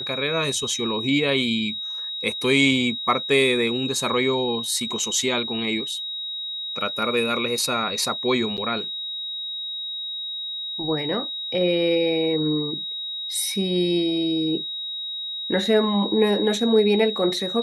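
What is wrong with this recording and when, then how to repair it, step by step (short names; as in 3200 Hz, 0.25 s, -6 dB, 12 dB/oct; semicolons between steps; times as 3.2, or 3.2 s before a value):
tone 3800 Hz -28 dBFS
8.57–8.58 gap 7.8 ms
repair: notch 3800 Hz, Q 30; interpolate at 8.57, 7.8 ms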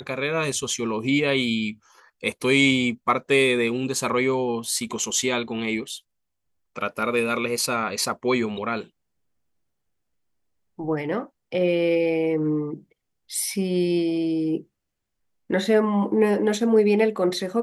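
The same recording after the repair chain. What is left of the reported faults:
none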